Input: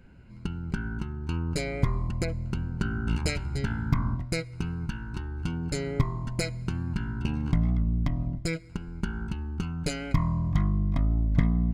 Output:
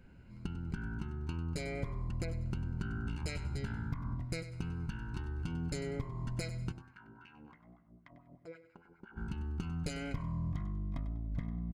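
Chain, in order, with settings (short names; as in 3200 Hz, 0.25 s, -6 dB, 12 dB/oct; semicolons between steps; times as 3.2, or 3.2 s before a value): compressor 12:1, threshold -29 dBFS, peak gain reduction 13.5 dB; 6.71–9.16 LFO band-pass sine 2.2 Hz -> 9.4 Hz 470–2000 Hz; feedback echo 97 ms, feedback 28%, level -13 dB; gain -4.5 dB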